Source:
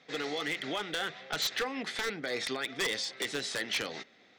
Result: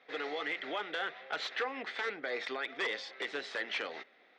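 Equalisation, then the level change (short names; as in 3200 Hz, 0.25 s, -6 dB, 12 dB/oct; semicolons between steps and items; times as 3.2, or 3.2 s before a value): BPF 410–2600 Hz; 0.0 dB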